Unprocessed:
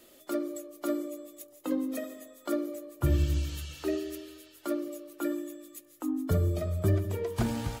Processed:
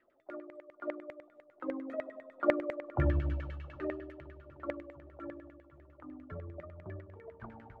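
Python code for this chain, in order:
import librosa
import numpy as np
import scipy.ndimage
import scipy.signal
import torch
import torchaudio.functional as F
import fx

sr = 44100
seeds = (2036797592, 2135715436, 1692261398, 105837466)

y = fx.doppler_pass(x, sr, speed_mps=7, closest_m=4.1, pass_at_s=2.88)
y = fx.echo_swing(y, sr, ms=761, ratio=1.5, feedback_pct=67, wet_db=-22.0)
y = fx.filter_lfo_lowpass(y, sr, shape='saw_down', hz=10.0, low_hz=560.0, high_hz=2100.0, q=7.0)
y = y * librosa.db_to_amplitude(-3.5)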